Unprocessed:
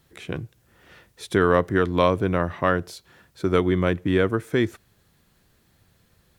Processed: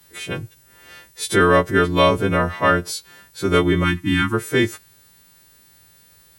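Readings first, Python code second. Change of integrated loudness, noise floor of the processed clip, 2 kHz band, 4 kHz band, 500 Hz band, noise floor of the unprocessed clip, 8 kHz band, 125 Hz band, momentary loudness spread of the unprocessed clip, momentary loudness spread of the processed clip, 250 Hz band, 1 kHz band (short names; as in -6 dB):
+4.0 dB, -53 dBFS, +7.5 dB, +10.0 dB, +2.5 dB, -63 dBFS, n/a, +3.5 dB, 14 LU, 15 LU, +3.0 dB, +5.5 dB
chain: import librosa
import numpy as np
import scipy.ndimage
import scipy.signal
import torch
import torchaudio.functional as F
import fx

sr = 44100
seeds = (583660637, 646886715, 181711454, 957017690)

y = fx.freq_snap(x, sr, grid_st=2)
y = fx.spec_erase(y, sr, start_s=3.84, length_s=0.5, low_hz=360.0, high_hz=790.0)
y = y * librosa.db_to_amplitude(4.0)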